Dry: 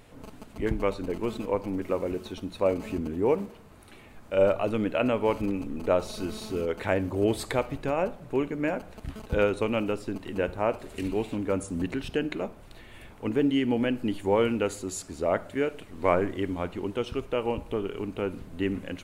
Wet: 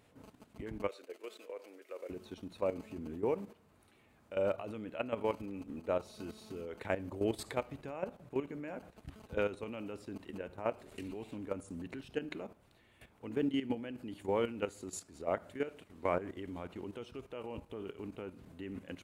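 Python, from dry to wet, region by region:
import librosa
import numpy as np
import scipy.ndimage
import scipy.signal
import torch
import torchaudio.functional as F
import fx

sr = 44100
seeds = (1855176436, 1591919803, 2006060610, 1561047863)

y = fx.chain(x, sr, fx.highpass(hz=460.0, slope=24),
    fx.peak_eq(hz=900.0, db=-12.0, octaves=0.74), at=(0.88, 2.1))
y = scipy.signal.sosfilt(scipy.signal.butter(2, 64.0, 'highpass', fs=sr, output='sos'), y)
y = fx.level_steps(y, sr, step_db=12)
y = y * librosa.db_to_amplitude(-6.5)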